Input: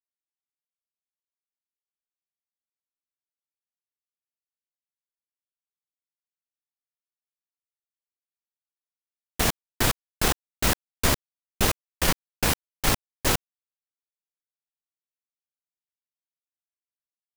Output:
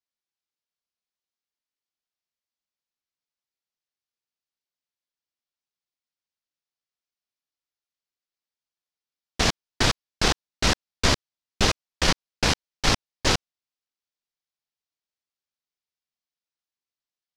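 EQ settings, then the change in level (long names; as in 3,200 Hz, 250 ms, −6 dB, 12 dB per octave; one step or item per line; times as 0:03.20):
low-pass with resonance 5,200 Hz, resonance Q 1.6
+1.5 dB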